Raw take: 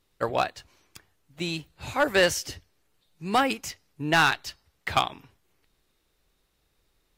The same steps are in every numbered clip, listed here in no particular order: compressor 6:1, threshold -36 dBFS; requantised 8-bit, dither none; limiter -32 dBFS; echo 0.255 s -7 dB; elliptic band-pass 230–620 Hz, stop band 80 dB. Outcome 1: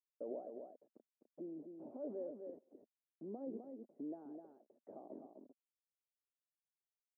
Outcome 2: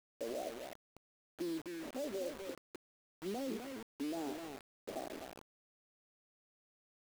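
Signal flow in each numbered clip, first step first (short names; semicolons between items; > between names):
requantised > limiter > echo > compressor > elliptic band-pass; elliptic band-pass > limiter > compressor > echo > requantised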